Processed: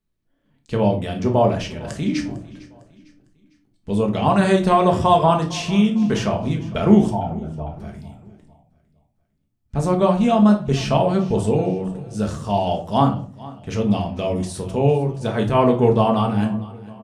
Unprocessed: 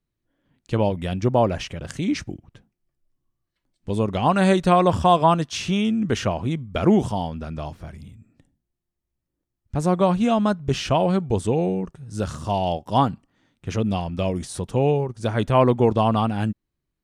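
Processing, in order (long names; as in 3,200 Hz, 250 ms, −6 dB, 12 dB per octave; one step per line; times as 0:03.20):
0:07.10–0:07.80: spectral envelope exaggerated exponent 2
repeating echo 453 ms, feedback 42%, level −20 dB
rectangular room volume 330 cubic metres, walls furnished, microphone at 1.5 metres
level −1 dB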